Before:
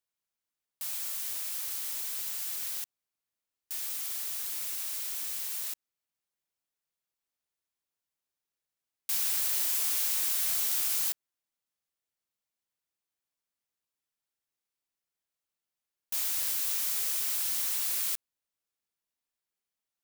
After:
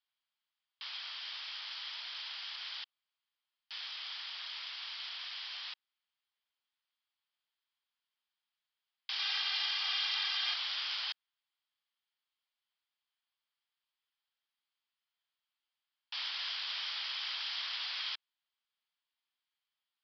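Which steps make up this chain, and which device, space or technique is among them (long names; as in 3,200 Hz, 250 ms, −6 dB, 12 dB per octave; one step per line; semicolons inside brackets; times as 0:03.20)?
musical greeting card (downsampling to 11,025 Hz; high-pass filter 830 Hz 24 dB per octave; parametric band 3,200 Hz +8 dB 0.23 octaves)
0:09.19–0:10.54: comb filter 2.5 ms, depth 95%
level +2.5 dB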